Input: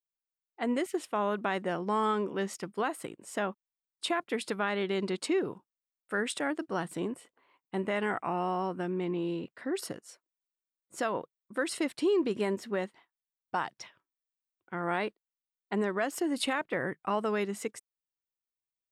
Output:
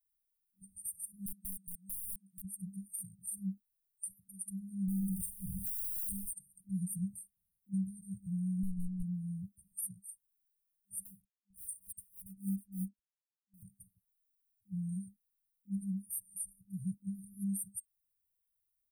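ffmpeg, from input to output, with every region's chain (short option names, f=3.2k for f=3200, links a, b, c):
-filter_complex "[0:a]asettb=1/sr,asplit=3[a][b][c];[a]atrim=end=1.264[d];[b]atrim=start=1.26:end=2.45,asetpts=PTS-STARTPTS,afade=t=in:d=0.004:c=qsin,afade=t=out:st=1.186:d=0.004:c=qsin,highpass=550,aeval=exprs='(mod(17.8*val(0)+1,2)-1)/17.8':c=same[e];[c]atrim=start=2.446[f];[d][e]acrossfade=d=0.004:c1=hsin:c2=qsin[g];[g][f]acrossfade=d=0.004:c1=qsin:c2=hsin,asettb=1/sr,asplit=3[h][i][j];[h]atrim=end=4.884[k];[i]atrim=start=4.88:end=6.33,asetpts=PTS-STARTPTS,afade=t=in:d=0.004:c=qsin,afade=t=out:st=1.446:d=0.004:c=qsin,aeval=exprs='val(0)+0.5*0.0178*sgn(val(0))':c=same,asplit=2[l][m];[m]adelay=46,volume=-10dB[n];[l][n]amix=inputs=2:normalize=0,atrim=end_sample=63945[o];[j]atrim=start=6.326[p];[k][o]acrossfade=d=0.004:c1=hsin:c2=qsin[q];[q][p]acrossfade=d=0.004:c1=qsin:c2=hsin,asettb=1/sr,asplit=3[r][s][t];[r]atrim=end=8.634[u];[s]atrim=start=8.63:end=9.03,asetpts=PTS-STARTPTS,afade=t=in:d=0.004:c=qsin,afade=t=out:st=0.396:d=0.004:c=qsin,highpass=130,lowpass=7.7k,asplit=2[v][w];[w]highpass=f=720:p=1,volume=27dB,asoftclip=type=tanh:threshold=-22.5dB[x];[v][x]amix=inputs=2:normalize=0,lowpass=f=3.4k:p=1,volume=-6dB[y];[t]atrim=start=9.026[z];[u][y]acrossfade=d=0.004:c1=hsin:c2=qsin[aa];[aa][z]acrossfade=d=0.004:c1=qsin:c2=hsin,asettb=1/sr,asplit=3[ab][ac][ad];[ab]atrim=end=11.054[ae];[ac]atrim=start=11.05:end=13.63,asetpts=PTS-STARTPTS,afade=t=in:d=0.004:c=qsin,afade=t=out:st=2.576:d=0.004:c=qsin,acrusher=bits=7:mix=0:aa=0.5,aeval=exprs='val(0)*pow(10,-23*(0.5-0.5*cos(2*PI*3.4*n/s))/20)':c=same[af];[ad]atrim=start=13.626[ag];[ae][af]acrossfade=d=0.004:c1=hsin:c2=qsin[ah];[ah][ag]acrossfade=d=0.004:c1=qsin:c2=hsin,afftfilt=real='re*(1-between(b*sr/4096,200,8600))':imag='im*(1-between(b*sr/4096,200,8600))':win_size=4096:overlap=0.75,aecho=1:1:3.4:0.83,alimiter=level_in=13.5dB:limit=-24dB:level=0:latency=1:release=395,volume=-13.5dB,volume=9.5dB"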